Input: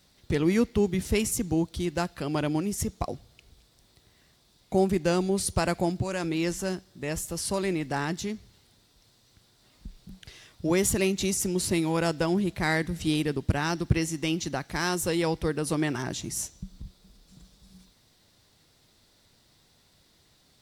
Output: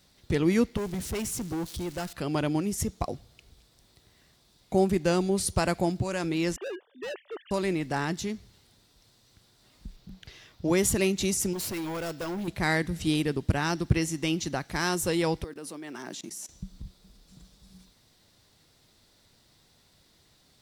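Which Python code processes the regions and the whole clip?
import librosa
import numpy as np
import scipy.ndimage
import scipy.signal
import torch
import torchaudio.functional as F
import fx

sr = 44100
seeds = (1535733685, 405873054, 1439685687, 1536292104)

y = fx.chain(x, sr, fx.crossing_spikes(level_db=-30.0),
    fx.high_shelf(hz=10000.0, db=-10.0),
    fx.tube_stage(drive_db=28.0, bias=0.2), at=(0.77, 2.13))
y = fx.chain(y, sr, fx.sine_speech(),
    fx.highpass(hz=390.0, slope=12),
    fx.clip_hard(threshold_db=-33.0), at=(6.56, 7.51))
y = fx.chain(y, sr, fx.peak_eq(hz=9100.0, db=-10.0, octaves=0.67),
    fx.doppler_dist(depth_ms=0.14), at=(9.96, 10.68))
y = fx.chain(y, sr, fx.low_shelf(hz=340.0, db=-5.5),
    fx.resample_bad(factor=2, down='none', up='hold'),
    fx.overload_stage(gain_db=30.5), at=(11.53, 12.48))
y = fx.chain(y, sr, fx.block_float(bits=7),
    fx.highpass(hz=200.0, slope=24),
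    fx.level_steps(step_db=20), at=(15.44, 16.49))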